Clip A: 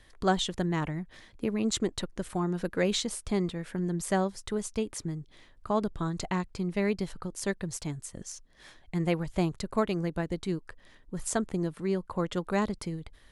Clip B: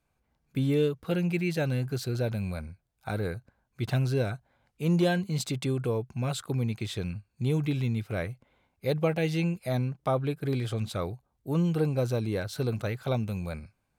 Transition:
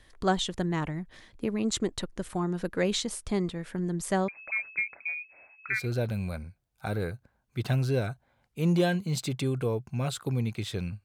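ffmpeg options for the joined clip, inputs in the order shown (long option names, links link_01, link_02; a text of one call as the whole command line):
ffmpeg -i cue0.wav -i cue1.wav -filter_complex "[0:a]asettb=1/sr,asplit=3[link_01][link_02][link_03];[link_01]atrim=end=4.284[link_04];[link_02]atrim=start=4.28:end=5.88,asetpts=PTS-STARTPTS,afade=type=in:duration=0.004:curve=qsin,afade=type=out:start_time=1.596:duration=0.004:curve=qsin,lowpass=frequency=2200:width_type=q:width=0.5098,lowpass=frequency=2200:width_type=q:width=0.6013,lowpass=frequency=2200:width_type=q:width=0.9,lowpass=frequency=2200:width_type=q:width=2.563,afreqshift=-2600[link_05];[link_03]atrim=start=5.876[link_06];[link_04][link_05]acrossfade=duration=0.004:curve1=hsin:curve2=qsin[link_07];[link_07][link_06]acrossfade=duration=0.004:curve1=qsin:curve2=hsin,apad=whole_dur=11.04,atrim=end=11.04,atrim=end=5.88,asetpts=PTS-STARTPTS[link_08];[1:a]atrim=start=1.91:end=7.27,asetpts=PTS-STARTPTS[link_09];[link_08][link_09]acrossfade=duration=0.2:curve1=tri:curve2=tri" out.wav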